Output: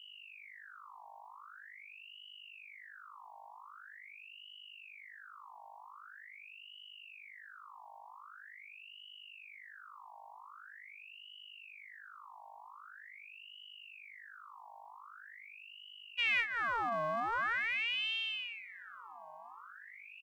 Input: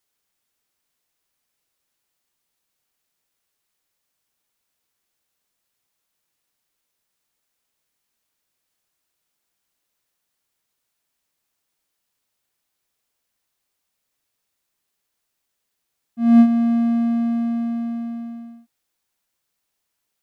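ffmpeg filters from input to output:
ffmpeg -i in.wav -filter_complex "[0:a]acompressor=threshold=-29dB:ratio=6,asplit=2[link_01][link_02];[link_02]aecho=0:1:1154|2308|3462:0.141|0.041|0.0119[link_03];[link_01][link_03]amix=inputs=2:normalize=0,aeval=exprs='0.075*(cos(1*acos(clip(val(0)/0.075,-1,1)))-cos(1*PI/2))+0.015*(cos(3*acos(clip(val(0)/0.075,-1,1)))-cos(3*PI/2))':channel_layout=same,aeval=exprs='val(0)+0.00282*(sin(2*PI*50*n/s)+sin(2*PI*2*50*n/s)/2+sin(2*PI*3*50*n/s)/3+sin(2*PI*4*50*n/s)/4+sin(2*PI*5*50*n/s)/5)':channel_layout=same,aeval=exprs='val(0)*sin(2*PI*1900*n/s+1900*0.55/0.44*sin(2*PI*0.44*n/s))':channel_layout=same,volume=1.5dB" out.wav

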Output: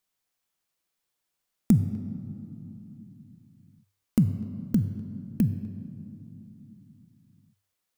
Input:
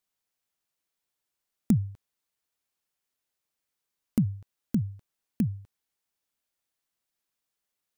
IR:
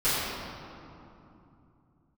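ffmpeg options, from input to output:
-filter_complex "[0:a]asplit=2[link_01][link_02];[1:a]atrim=start_sample=2205,lowshelf=frequency=130:gain=-6[link_03];[link_02][link_03]afir=irnorm=-1:irlink=0,volume=-22dB[link_04];[link_01][link_04]amix=inputs=2:normalize=0,volume=2.5dB"

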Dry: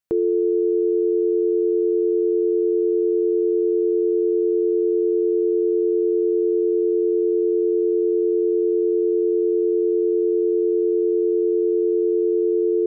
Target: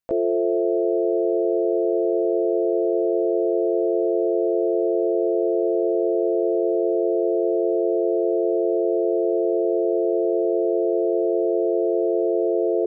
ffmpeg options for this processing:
ffmpeg -i in.wav -filter_complex "[0:a]asplit=2[link_01][link_02];[link_02]asetrate=66075,aresample=44100,atempo=0.66742,volume=-4dB[link_03];[link_01][link_03]amix=inputs=2:normalize=0,volume=-3dB" out.wav

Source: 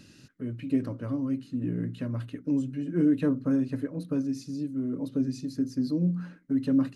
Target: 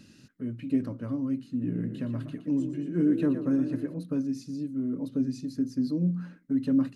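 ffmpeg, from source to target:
ffmpeg -i in.wav -filter_complex "[0:a]equalizer=frequency=220:width=2.9:gain=5.5,asettb=1/sr,asplit=3[link_01][link_02][link_03];[link_01]atrim=end=1.564[link_04];[link_02]atrim=start=1.56:end=3.94,asetpts=PTS-STARTPTS,afade=type=in:duration=0.004:curve=qsin,afade=type=out:start_time=2.376:duration=0.004:curve=qsin,asplit=5[link_05][link_06][link_07][link_08][link_09];[link_06]adelay=118,afreqshift=32,volume=-9.5dB[link_10];[link_07]adelay=236,afreqshift=64,volume=-17.9dB[link_11];[link_08]adelay=354,afreqshift=96,volume=-26.3dB[link_12];[link_09]adelay=472,afreqshift=128,volume=-34.7dB[link_13];[link_05][link_10][link_11][link_12][link_13]amix=inputs=5:normalize=0,atrim=end_sample=104958[link_14];[link_03]atrim=start=3.936[link_15];[link_04][link_14]acrossfade=duration=0.004:curve1=hsin:curve2=qsin[link_16];[link_16][link_15]acrossfade=duration=0.004:curve1=qsin:curve2=hsin,volume=-2.5dB" out.wav

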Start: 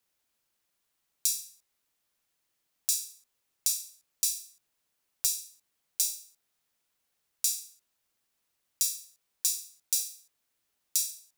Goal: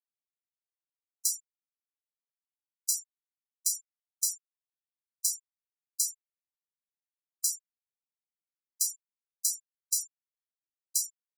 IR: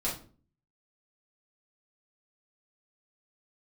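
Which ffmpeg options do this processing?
-af "afreqshift=74,afftfilt=real='re*gte(hypot(re,im),0.0447)':imag='im*gte(hypot(re,im),0.0447)':win_size=1024:overlap=0.75"

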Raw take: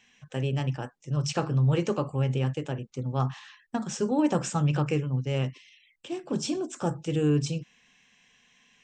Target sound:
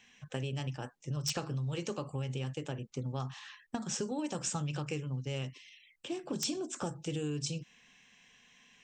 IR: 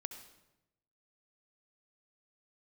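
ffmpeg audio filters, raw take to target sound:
-filter_complex "[0:a]acrossover=split=3100[link_01][link_02];[link_01]acompressor=threshold=-34dB:ratio=6[link_03];[link_02]aeval=exprs='(mod(14.1*val(0)+1,2)-1)/14.1':channel_layout=same[link_04];[link_03][link_04]amix=inputs=2:normalize=0"

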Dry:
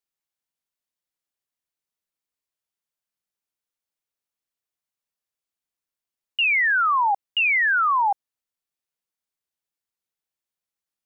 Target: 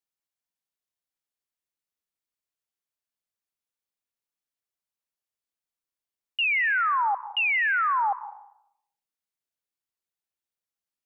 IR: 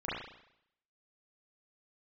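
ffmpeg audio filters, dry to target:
-filter_complex "[0:a]asplit=2[link_01][link_02];[1:a]atrim=start_sample=2205,adelay=127[link_03];[link_02][link_03]afir=irnorm=-1:irlink=0,volume=-20.5dB[link_04];[link_01][link_04]amix=inputs=2:normalize=0,volume=-4dB"

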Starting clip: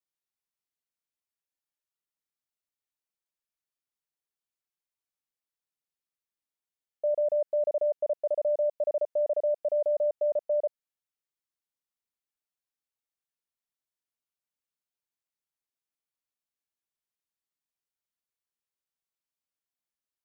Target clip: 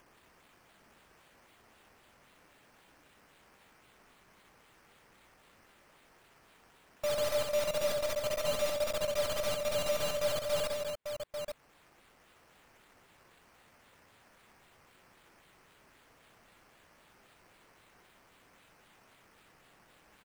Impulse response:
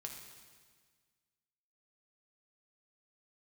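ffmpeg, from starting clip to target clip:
-af "highpass=frequency=350:width=0.5412,highpass=frequency=350:width=1.3066,lowshelf=frequency=460:gain=-3,acrusher=samples=10:mix=1:aa=0.000001:lfo=1:lforange=6:lforate=3.8,asoftclip=type=tanh:threshold=-25dB,acrusher=bits=3:mode=log:mix=0:aa=0.000001,aeval=exprs='0.0531*(cos(1*acos(clip(val(0)/0.0531,-1,1)))-cos(1*PI/2))+0.00473*(cos(3*acos(clip(val(0)/0.0531,-1,1)))-cos(3*PI/2))+0.0119*(cos(4*acos(clip(val(0)/0.0531,-1,1)))-cos(4*PI/2))':channel_layout=same,acompressor=mode=upward:threshold=-36dB:ratio=2.5,aecho=1:1:63|165|229|844:0.596|0.282|0.398|0.447,volume=-3dB"

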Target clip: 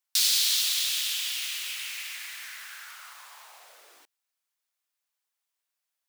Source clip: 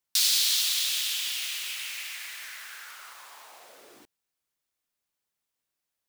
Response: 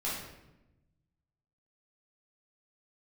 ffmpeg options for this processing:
-af "highpass=720"

